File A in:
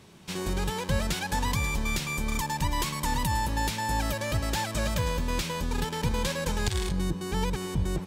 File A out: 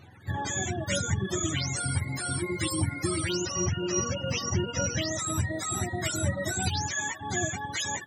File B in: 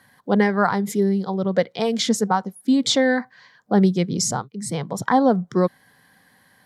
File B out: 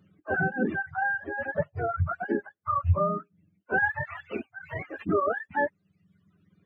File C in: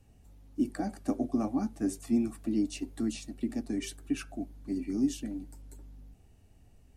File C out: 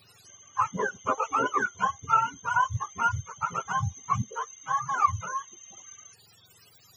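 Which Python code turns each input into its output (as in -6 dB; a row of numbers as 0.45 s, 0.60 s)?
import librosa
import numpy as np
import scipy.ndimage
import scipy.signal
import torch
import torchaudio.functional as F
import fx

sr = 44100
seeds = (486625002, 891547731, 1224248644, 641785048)

y = fx.octave_mirror(x, sr, pivot_hz=560.0)
y = fx.dereverb_blind(y, sr, rt60_s=1.0)
y = y * 10.0 ** (-30 / 20.0) / np.sqrt(np.mean(np.square(y)))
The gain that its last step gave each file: +3.0 dB, -6.0 dB, +9.5 dB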